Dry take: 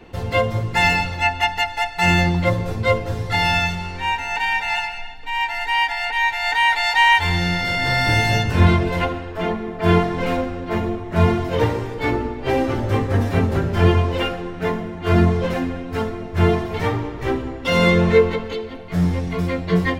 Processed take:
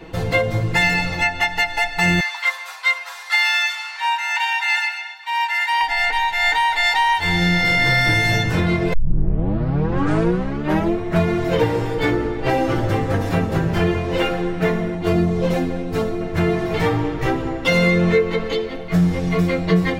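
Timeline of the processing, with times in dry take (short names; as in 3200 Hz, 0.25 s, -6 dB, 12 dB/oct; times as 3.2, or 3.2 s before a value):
2.2–5.81 steep high-pass 900 Hz
8.93 tape start 2.02 s
14.97–16.21 bell 1700 Hz -7 dB 1.4 oct
whole clip: compressor 4:1, threshold -20 dBFS; comb 6.2 ms, depth 58%; gain +4.5 dB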